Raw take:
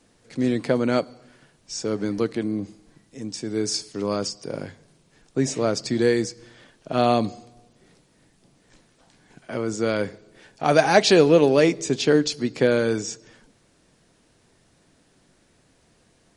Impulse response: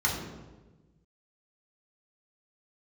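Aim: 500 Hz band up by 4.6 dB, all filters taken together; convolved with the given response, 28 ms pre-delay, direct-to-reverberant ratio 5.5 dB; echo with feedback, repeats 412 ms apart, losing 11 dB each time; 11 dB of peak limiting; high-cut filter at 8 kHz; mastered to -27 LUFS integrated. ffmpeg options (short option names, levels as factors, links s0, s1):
-filter_complex "[0:a]lowpass=8000,equalizer=f=500:t=o:g=5.5,alimiter=limit=0.299:level=0:latency=1,aecho=1:1:412|824|1236:0.282|0.0789|0.0221,asplit=2[s0][s1];[1:a]atrim=start_sample=2205,adelay=28[s2];[s1][s2]afir=irnorm=-1:irlink=0,volume=0.158[s3];[s0][s3]amix=inputs=2:normalize=0,volume=0.562"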